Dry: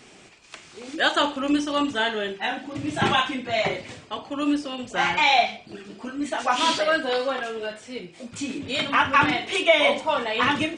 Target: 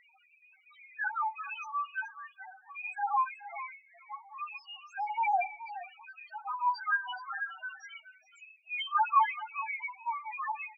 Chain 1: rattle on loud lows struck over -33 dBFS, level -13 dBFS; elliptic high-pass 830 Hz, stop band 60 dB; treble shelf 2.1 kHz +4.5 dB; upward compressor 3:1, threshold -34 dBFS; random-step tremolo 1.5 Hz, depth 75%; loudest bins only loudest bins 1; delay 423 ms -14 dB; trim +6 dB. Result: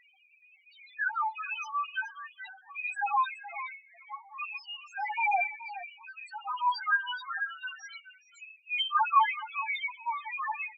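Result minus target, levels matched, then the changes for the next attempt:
4 kHz band +5.5 dB
change: treble shelf 2.1 kHz -3.5 dB

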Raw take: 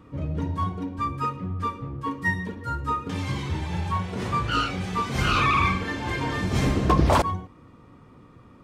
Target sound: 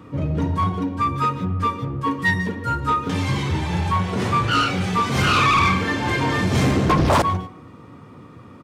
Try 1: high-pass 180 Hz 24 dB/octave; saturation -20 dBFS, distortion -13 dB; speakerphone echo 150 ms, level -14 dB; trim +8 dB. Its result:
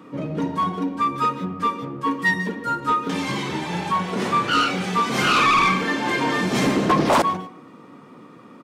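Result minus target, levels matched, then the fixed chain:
125 Hz band -8.0 dB
high-pass 79 Hz 24 dB/octave; saturation -20 dBFS, distortion -12 dB; speakerphone echo 150 ms, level -14 dB; trim +8 dB

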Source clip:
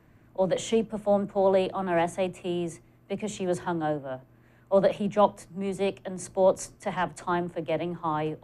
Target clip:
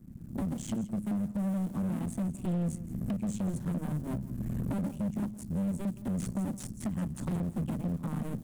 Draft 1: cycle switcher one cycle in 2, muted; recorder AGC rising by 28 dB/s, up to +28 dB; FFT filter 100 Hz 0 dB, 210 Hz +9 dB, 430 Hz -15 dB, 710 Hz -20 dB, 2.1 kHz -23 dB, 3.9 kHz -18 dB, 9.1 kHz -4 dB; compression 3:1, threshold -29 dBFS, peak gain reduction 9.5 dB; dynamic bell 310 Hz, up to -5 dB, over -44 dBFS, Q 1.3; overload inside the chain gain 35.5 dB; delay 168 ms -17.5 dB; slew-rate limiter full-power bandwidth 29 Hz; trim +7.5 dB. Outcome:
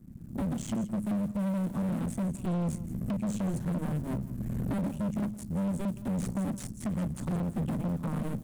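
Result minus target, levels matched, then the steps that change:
compression: peak gain reduction -4.5 dB
change: compression 3:1, threshold -35.5 dBFS, peak gain reduction 13.5 dB

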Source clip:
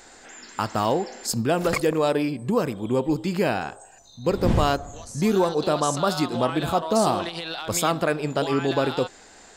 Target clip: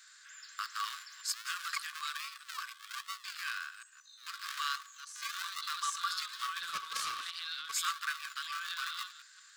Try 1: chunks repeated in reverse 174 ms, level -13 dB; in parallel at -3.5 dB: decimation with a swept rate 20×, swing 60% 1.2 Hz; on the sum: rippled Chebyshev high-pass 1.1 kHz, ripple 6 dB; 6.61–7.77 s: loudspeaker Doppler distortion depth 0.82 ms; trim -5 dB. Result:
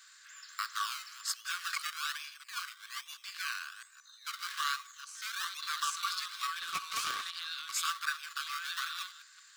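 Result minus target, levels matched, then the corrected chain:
decimation with a swept rate: distortion -20 dB
chunks repeated in reverse 174 ms, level -13 dB; in parallel at -3.5 dB: decimation with a swept rate 76×, swing 60% 1.2 Hz; on the sum: rippled Chebyshev high-pass 1.1 kHz, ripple 6 dB; 6.61–7.77 s: loudspeaker Doppler distortion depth 0.82 ms; trim -5 dB

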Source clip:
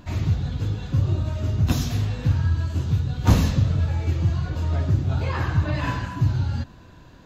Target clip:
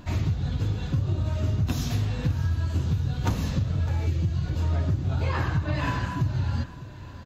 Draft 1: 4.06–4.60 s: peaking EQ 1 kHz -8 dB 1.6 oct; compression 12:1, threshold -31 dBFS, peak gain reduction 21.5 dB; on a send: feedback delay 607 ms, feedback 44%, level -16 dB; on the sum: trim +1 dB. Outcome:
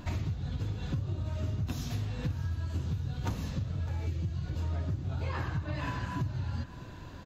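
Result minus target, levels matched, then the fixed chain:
compression: peak gain reduction +8.5 dB
4.06–4.60 s: peaking EQ 1 kHz -8 dB 1.6 oct; compression 12:1, threshold -22 dBFS, peak gain reduction 13 dB; on a send: feedback delay 607 ms, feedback 44%, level -16 dB; on the sum: trim +1 dB

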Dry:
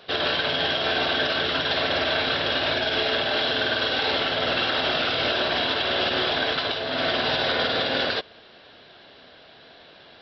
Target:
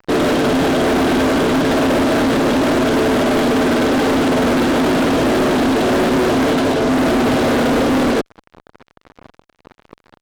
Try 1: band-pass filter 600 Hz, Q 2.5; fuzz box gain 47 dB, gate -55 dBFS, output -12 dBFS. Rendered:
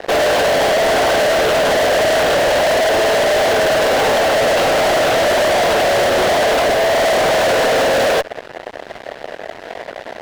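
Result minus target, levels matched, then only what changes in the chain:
250 Hz band -13.5 dB
change: band-pass filter 260 Hz, Q 2.5

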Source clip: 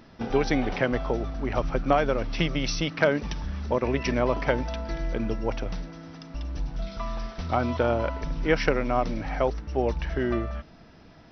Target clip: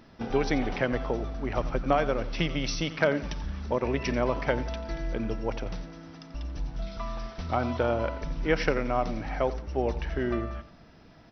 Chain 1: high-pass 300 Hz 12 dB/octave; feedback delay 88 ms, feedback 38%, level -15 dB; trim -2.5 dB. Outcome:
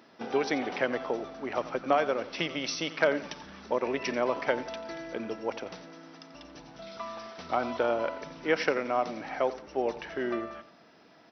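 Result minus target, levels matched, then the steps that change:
250 Hz band -3.0 dB
remove: high-pass 300 Hz 12 dB/octave

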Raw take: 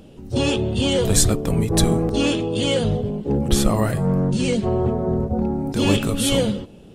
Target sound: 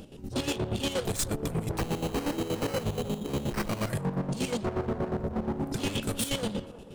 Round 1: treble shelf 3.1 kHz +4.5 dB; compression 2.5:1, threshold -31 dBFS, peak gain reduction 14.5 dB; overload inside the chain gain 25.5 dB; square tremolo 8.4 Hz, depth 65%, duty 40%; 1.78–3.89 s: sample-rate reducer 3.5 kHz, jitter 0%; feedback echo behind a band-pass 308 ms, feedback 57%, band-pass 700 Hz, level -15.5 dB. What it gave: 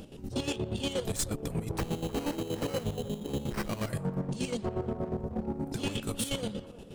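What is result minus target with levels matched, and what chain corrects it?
compression: peak gain reduction +6.5 dB
treble shelf 3.1 kHz +4.5 dB; compression 2.5:1, threshold -20.5 dBFS, peak gain reduction 8 dB; overload inside the chain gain 25.5 dB; square tremolo 8.4 Hz, depth 65%, duty 40%; 1.78–3.89 s: sample-rate reducer 3.5 kHz, jitter 0%; feedback echo behind a band-pass 308 ms, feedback 57%, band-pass 700 Hz, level -15.5 dB

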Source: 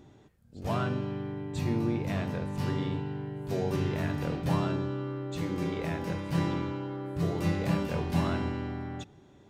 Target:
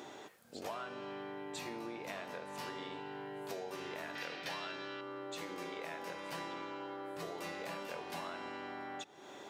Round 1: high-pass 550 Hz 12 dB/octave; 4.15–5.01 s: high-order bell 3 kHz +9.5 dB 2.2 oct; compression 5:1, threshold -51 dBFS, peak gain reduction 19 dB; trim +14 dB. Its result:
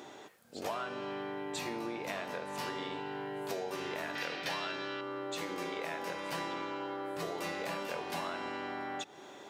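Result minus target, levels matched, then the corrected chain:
compression: peak gain reduction -5 dB
high-pass 550 Hz 12 dB/octave; 4.15–5.01 s: high-order bell 3 kHz +9.5 dB 2.2 oct; compression 5:1, threshold -57.5 dBFS, peak gain reduction 24.5 dB; trim +14 dB

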